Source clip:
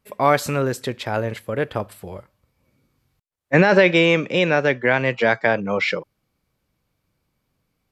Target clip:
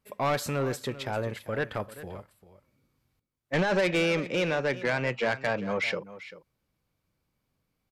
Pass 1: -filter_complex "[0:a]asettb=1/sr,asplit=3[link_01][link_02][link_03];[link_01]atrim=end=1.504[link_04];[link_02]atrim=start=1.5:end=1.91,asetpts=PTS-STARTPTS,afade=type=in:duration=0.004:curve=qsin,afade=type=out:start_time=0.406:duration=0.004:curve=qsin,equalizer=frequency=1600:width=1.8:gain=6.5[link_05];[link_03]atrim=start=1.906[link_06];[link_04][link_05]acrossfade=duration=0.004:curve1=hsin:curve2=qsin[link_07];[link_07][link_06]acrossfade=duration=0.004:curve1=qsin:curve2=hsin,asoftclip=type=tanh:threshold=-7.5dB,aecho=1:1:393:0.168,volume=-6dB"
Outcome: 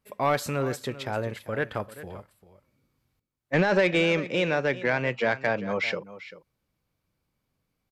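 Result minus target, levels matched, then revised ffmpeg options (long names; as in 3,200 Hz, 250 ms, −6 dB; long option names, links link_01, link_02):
soft clipping: distortion −8 dB
-filter_complex "[0:a]asettb=1/sr,asplit=3[link_01][link_02][link_03];[link_01]atrim=end=1.504[link_04];[link_02]atrim=start=1.5:end=1.91,asetpts=PTS-STARTPTS,afade=type=in:duration=0.004:curve=qsin,afade=type=out:start_time=0.406:duration=0.004:curve=qsin,equalizer=frequency=1600:width=1.8:gain=6.5[link_05];[link_03]atrim=start=1.906[link_06];[link_04][link_05]acrossfade=duration=0.004:curve1=hsin:curve2=qsin[link_07];[link_07][link_06]acrossfade=duration=0.004:curve1=qsin:curve2=hsin,asoftclip=type=tanh:threshold=-14.5dB,aecho=1:1:393:0.168,volume=-6dB"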